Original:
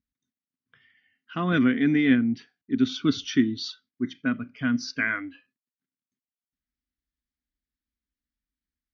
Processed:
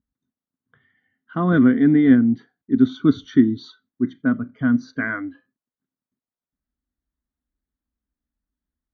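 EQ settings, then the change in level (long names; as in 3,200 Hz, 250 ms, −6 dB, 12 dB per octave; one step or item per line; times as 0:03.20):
moving average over 17 samples
+7.0 dB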